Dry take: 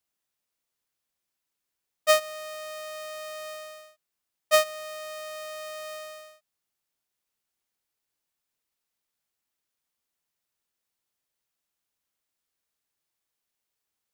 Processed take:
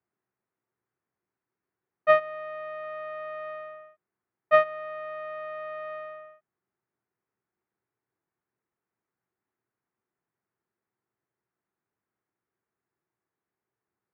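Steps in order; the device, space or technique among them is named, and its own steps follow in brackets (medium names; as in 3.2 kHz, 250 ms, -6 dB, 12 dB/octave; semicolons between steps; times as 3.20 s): local Wiener filter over 9 samples; 2.08–2.84 s: band-stop 1.4 kHz, Q 8.4; bass cabinet (cabinet simulation 82–2000 Hz, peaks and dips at 120 Hz +8 dB, 190 Hz +4 dB, 370 Hz +9 dB, 570 Hz -4 dB); trim +4 dB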